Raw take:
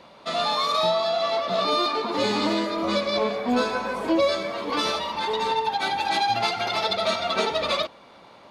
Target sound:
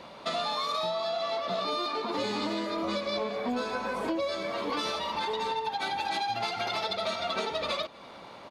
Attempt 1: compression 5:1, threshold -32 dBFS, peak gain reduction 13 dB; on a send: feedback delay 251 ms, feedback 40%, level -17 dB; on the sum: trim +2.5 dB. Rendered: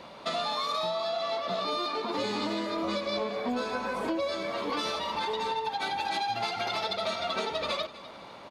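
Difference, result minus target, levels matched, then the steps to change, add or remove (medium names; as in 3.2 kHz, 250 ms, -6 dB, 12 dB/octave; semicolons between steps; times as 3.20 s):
echo-to-direct +10 dB
change: feedback delay 251 ms, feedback 40%, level -27 dB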